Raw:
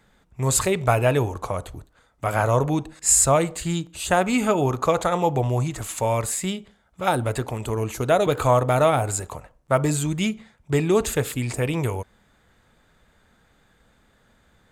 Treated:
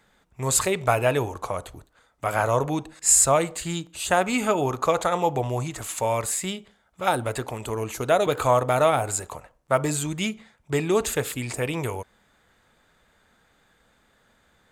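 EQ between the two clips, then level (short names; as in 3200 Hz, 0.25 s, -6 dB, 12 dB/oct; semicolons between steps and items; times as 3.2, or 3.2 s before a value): low shelf 270 Hz -7.5 dB; 0.0 dB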